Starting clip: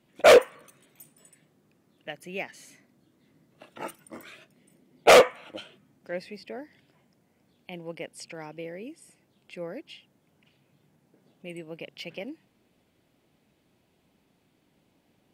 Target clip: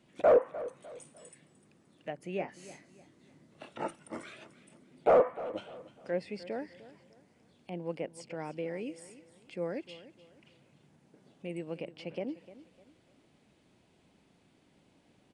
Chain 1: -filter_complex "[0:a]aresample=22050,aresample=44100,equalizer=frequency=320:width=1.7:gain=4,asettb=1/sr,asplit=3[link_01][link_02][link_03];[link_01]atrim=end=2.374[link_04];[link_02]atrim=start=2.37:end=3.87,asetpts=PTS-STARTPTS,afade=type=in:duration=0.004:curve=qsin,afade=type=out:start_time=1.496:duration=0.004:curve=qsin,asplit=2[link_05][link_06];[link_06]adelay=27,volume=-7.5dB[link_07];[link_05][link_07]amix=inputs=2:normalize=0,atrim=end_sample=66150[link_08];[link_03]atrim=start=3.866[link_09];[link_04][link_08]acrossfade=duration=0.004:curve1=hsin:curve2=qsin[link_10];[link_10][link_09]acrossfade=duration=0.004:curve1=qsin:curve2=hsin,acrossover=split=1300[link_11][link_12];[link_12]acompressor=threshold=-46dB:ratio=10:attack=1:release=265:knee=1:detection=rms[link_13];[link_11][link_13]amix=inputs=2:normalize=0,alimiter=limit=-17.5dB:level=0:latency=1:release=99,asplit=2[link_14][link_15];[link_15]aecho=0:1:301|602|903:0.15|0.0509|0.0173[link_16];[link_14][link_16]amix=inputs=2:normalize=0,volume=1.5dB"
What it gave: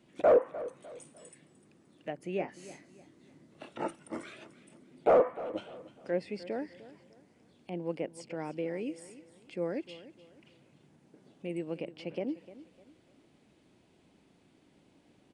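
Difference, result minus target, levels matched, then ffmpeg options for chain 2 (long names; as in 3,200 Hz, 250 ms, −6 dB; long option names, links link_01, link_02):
250 Hz band +2.5 dB
-filter_complex "[0:a]aresample=22050,aresample=44100,asettb=1/sr,asplit=3[link_01][link_02][link_03];[link_01]atrim=end=2.374[link_04];[link_02]atrim=start=2.37:end=3.87,asetpts=PTS-STARTPTS,afade=type=in:duration=0.004:curve=qsin,afade=type=out:start_time=1.496:duration=0.004:curve=qsin,asplit=2[link_05][link_06];[link_06]adelay=27,volume=-7.5dB[link_07];[link_05][link_07]amix=inputs=2:normalize=0,atrim=end_sample=66150[link_08];[link_03]atrim=start=3.866[link_09];[link_04][link_08]acrossfade=duration=0.004:curve1=hsin:curve2=qsin[link_10];[link_10][link_09]acrossfade=duration=0.004:curve1=qsin:curve2=hsin,acrossover=split=1300[link_11][link_12];[link_12]acompressor=threshold=-46dB:ratio=10:attack=1:release=265:knee=1:detection=rms[link_13];[link_11][link_13]amix=inputs=2:normalize=0,alimiter=limit=-17.5dB:level=0:latency=1:release=99,asplit=2[link_14][link_15];[link_15]aecho=0:1:301|602|903:0.15|0.0509|0.0173[link_16];[link_14][link_16]amix=inputs=2:normalize=0,volume=1.5dB"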